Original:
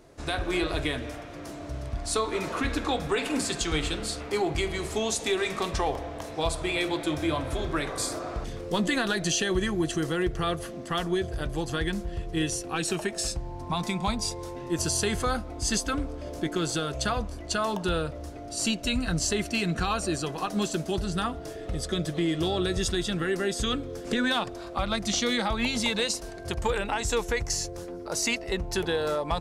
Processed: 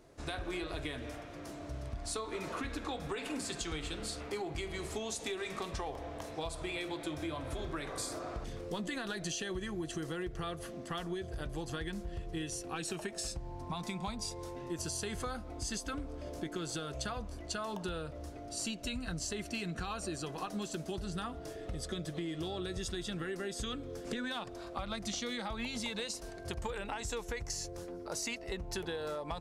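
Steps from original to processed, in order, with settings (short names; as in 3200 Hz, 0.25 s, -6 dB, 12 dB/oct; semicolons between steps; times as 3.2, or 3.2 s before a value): compressor, threshold -29 dBFS, peak gain reduction 8 dB; gain -6 dB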